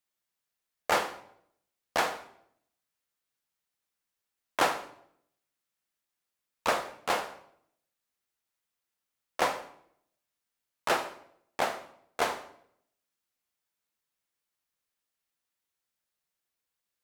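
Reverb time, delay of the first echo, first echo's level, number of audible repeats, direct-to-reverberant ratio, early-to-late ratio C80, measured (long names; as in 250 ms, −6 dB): 0.70 s, no echo audible, no echo audible, no echo audible, 8.0 dB, 15.5 dB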